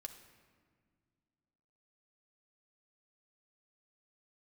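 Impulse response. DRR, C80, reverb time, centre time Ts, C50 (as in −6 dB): 4.0 dB, 11.0 dB, 1.8 s, 18 ms, 9.0 dB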